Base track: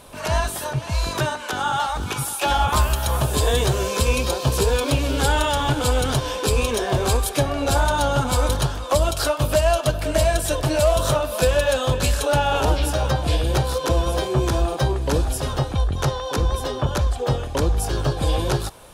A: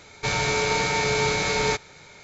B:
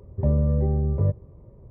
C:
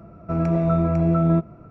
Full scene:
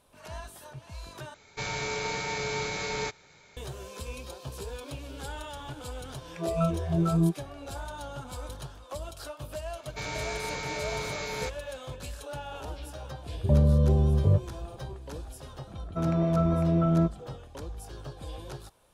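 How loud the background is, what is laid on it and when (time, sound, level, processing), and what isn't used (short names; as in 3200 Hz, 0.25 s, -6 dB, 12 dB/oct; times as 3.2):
base track -19.5 dB
1.34 replace with A -9 dB
5.91 add C -4.5 dB + spectral noise reduction 27 dB
9.73 add A -11.5 dB
13.26 add B
15.67 add C -5 dB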